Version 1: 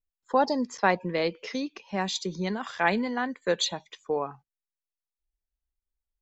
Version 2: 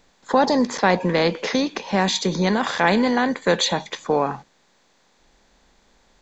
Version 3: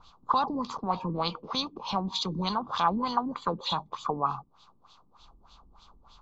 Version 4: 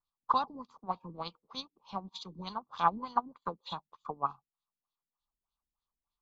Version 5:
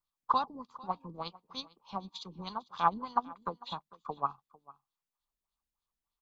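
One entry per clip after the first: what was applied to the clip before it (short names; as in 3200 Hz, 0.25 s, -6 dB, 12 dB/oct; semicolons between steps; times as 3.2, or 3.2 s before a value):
per-bin compression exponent 0.6; low shelf 190 Hz +7 dB; in parallel at -2 dB: limiter -15 dBFS, peak gain reduction 9.5 dB
compressor 1.5:1, threshold -40 dBFS, peak gain reduction 10 dB; LFO low-pass sine 3.3 Hz 270–3600 Hz; EQ curve 120 Hz 0 dB, 230 Hz -11 dB, 550 Hz -15 dB, 1200 Hz +6 dB, 1800 Hz -26 dB, 2800 Hz -6 dB, 4500 Hz +4 dB; gain +4.5 dB
upward expander 2.5:1, over -46 dBFS
echo 0.449 s -21.5 dB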